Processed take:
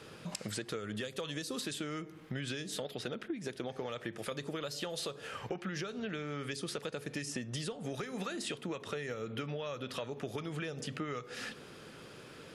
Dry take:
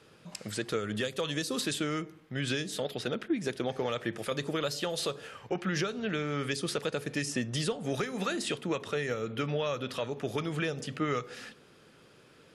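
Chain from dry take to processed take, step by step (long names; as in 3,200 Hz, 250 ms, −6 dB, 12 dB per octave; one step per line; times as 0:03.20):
downward compressor 6 to 1, threshold −44 dBFS, peak gain reduction 18 dB
level +7 dB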